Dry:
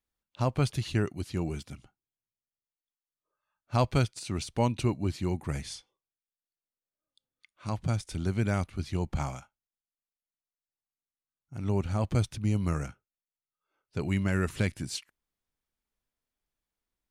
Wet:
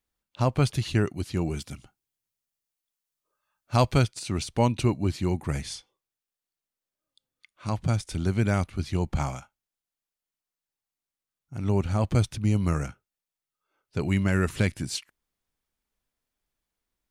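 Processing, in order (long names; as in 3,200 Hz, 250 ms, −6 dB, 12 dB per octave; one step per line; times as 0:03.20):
0:01.57–0:03.95: high-shelf EQ 4,400 Hz +6 dB
level +4 dB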